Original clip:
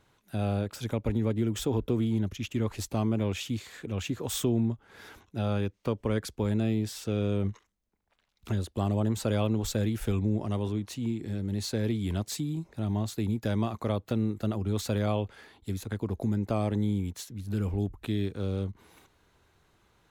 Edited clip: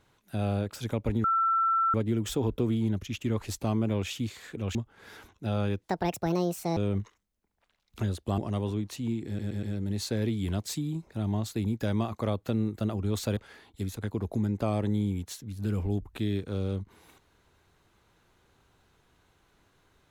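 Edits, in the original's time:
1.24 add tone 1340 Hz -22 dBFS 0.70 s
4.05–4.67 cut
5.75–7.26 speed 161%
8.87–10.36 cut
11.25 stutter 0.12 s, 4 plays
14.99–15.25 cut

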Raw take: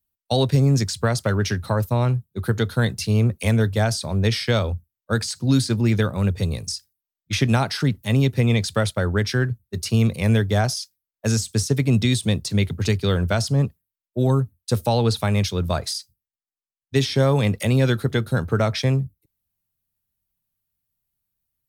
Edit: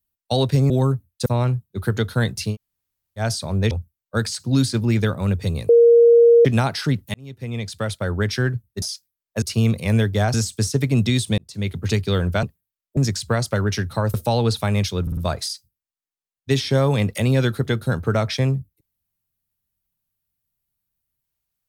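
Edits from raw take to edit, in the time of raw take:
0.7–1.87 swap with 14.18–14.74
3.13–3.82 room tone, crossfade 0.10 s
4.32–4.67 cut
6.65–7.41 bleep 469 Hz -8 dBFS
8.1–9.26 fade in
10.7–11.3 move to 9.78
12.34–12.79 fade in
13.39–13.64 cut
15.62 stutter 0.05 s, 4 plays

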